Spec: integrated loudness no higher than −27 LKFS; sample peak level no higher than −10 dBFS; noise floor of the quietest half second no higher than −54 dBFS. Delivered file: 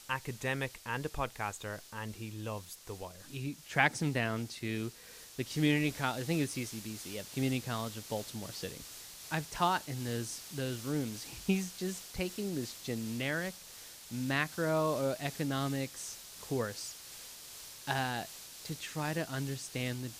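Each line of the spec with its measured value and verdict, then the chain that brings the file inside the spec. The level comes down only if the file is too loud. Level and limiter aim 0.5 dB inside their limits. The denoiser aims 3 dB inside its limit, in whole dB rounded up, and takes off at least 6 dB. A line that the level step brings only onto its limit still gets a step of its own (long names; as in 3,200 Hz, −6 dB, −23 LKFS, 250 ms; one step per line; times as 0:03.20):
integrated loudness −36.0 LKFS: in spec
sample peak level −11.0 dBFS: in spec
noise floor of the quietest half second −51 dBFS: out of spec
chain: broadband denoise 6 dB, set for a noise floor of −51 dBFS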